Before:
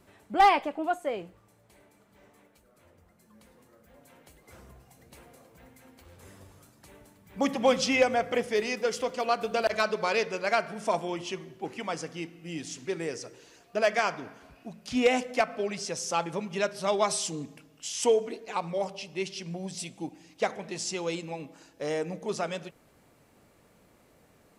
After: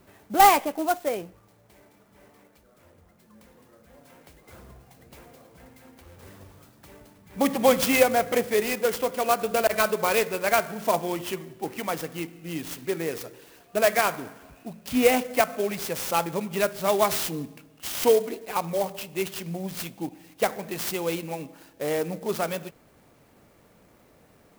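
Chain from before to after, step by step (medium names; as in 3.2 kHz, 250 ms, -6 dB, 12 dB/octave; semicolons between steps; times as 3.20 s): sampling jitter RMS 0.044 ms; trim +4 dB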